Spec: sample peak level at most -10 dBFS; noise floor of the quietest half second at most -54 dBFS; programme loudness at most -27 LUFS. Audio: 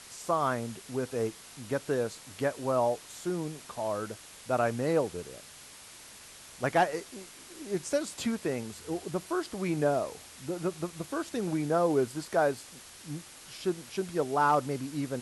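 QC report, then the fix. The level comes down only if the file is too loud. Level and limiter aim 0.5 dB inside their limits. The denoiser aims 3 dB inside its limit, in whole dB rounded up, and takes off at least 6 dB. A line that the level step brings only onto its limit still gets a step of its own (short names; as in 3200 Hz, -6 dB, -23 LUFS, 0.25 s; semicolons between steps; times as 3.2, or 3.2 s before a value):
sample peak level -15.0 dBFS: OK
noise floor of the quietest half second -50 dBFS: fail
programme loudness -31.5 LUFS: OK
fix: denoiser 7 dB, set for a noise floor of -50 dBFS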